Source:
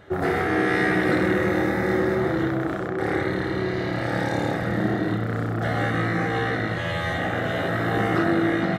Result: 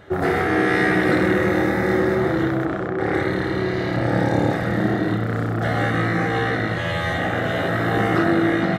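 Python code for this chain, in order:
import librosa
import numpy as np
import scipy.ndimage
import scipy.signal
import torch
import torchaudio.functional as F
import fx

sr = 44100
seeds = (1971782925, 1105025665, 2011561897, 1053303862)

y = fx.lowpass(x, sr, hz=3500.0, slope=6, at=(2.65, 3.14))
y = fx.tilt_shelf(y, sr, db=4.0, hz=970.0, at=(3.96, 4.51))
y = F.gain(torch.from_numpy(y), 3.0).numpy()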